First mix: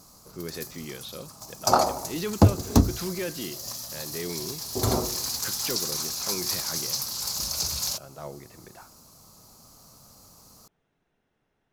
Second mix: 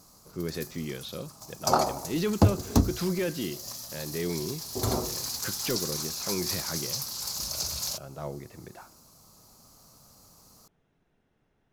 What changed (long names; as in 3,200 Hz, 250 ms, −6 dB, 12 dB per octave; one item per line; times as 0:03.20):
speech: add low-shelf EQ 350 Hz +6 dB
background −3.5 dB